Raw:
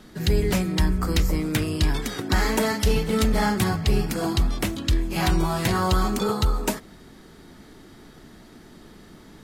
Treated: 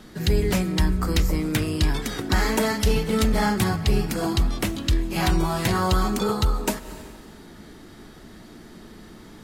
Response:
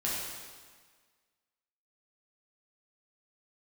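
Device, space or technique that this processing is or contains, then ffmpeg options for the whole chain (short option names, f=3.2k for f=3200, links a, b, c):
ducked reverb: -filter_complex "[0:a]asplit=3[a][b][c];[1:a]atrim=start_sample=2205[d];[b][d]afir=irnorm=-1:irlink=0[e];[c]apad=whole_len=416085[f];[e][f]sidechaincompress=threshold=-45dB:ratio=3:attack=7.9:release=137,volume=-9.5dB[g];[a][g]amix=inputs=2:normalize=0"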